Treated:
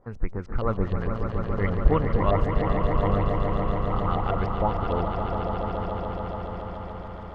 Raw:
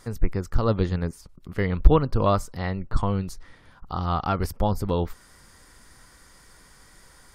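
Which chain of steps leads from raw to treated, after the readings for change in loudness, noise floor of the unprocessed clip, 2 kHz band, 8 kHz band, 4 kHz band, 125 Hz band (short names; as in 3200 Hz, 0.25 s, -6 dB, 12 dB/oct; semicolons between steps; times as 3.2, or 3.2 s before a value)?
-1.0 dB, -53 dBFS, +1.0 dB, under -20 dB, -3.5 dB, 0.0 dB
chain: regenerating reverse delay 0.229 s, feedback 83%, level -12.5 dB; LFO low-pass saw up 6.5 Hz 530–3300 Hz; swelling echo 0.141 s, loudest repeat 5, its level -8 dB; gain -5.5 dB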